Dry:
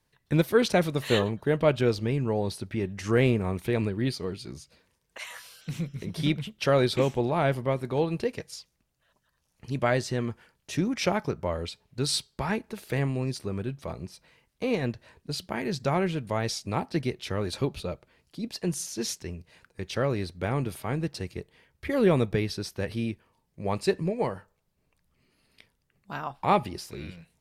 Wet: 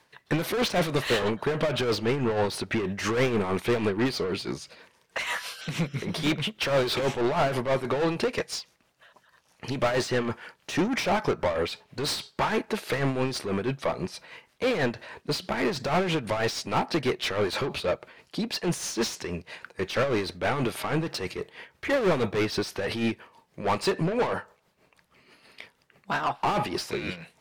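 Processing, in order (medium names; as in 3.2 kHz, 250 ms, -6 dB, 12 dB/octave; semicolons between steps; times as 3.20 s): overdrive pedal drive 32 dB, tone 2.5 kHz, clips at -9 dBFS; tremolo 6.2 Hz, depth 56%; trim -5.5 dB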